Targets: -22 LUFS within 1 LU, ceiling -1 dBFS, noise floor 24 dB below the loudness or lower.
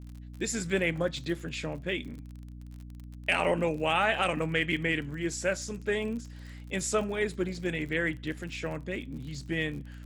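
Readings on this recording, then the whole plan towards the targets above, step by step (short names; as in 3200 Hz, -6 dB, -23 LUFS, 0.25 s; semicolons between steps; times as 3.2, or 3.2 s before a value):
ticks 45/s; hum 60 Hz; harmonics up to 300 Hz; hum level -42 dBFS; loudness -31.0 LUFS; peak -12.0 dBFS; loudness target -22.0 LUFS
-> de-click; notches 60/120/180/240/300 Hz; gain +9 dB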